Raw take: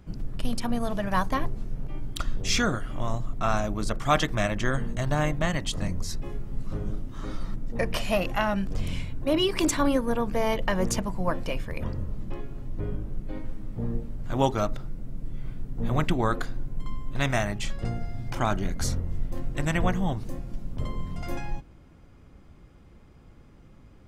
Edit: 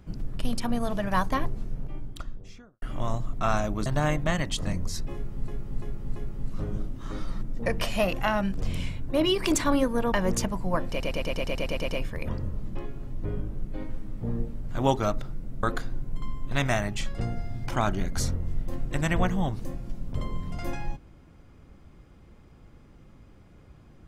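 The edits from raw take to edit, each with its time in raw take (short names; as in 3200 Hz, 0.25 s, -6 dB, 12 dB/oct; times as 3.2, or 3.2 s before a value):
1.57–2.82 studio fade out
3.86–5.01 cut
6.29–6.63 loop, 4 plays
10.25–10.66 cut
11.43 stutter 0.11 s, 10 plays
15.18–16.27 cut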